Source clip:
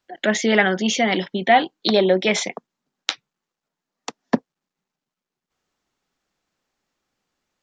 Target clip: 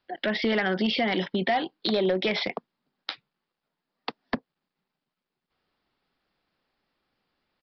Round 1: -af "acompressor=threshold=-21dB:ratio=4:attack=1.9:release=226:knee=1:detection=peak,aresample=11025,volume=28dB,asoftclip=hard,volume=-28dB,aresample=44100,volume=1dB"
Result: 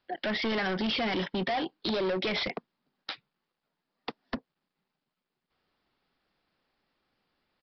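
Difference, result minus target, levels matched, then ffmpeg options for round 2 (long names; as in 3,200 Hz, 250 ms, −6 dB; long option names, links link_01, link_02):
gain into a clipping stage and back: distortion +12 dB
-af "acompressor=threshold=-21dB:ratio=4:attack=1.9:release=226:knee=1:detection=peak,aresample=11025,volume=19dB,asoftclip=hard,volume=-19dB,aresample=44100,volume=1dB"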